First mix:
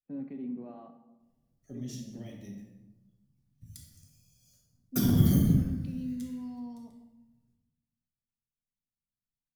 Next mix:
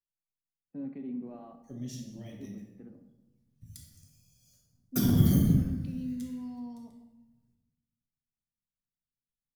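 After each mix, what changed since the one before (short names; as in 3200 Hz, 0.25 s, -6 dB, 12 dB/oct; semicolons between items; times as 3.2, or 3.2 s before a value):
first voice: entry +0.65 s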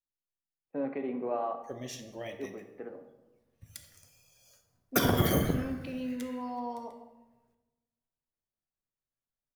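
background: send -8.5 dB; master: remove EQ curve 110 Hz 0 dB, 220 Hz +4 dB, 460 Hz -17 dB, 1100 Hz -19 dB, 2400 Hz -16 dB, 4900 Hz -6 dB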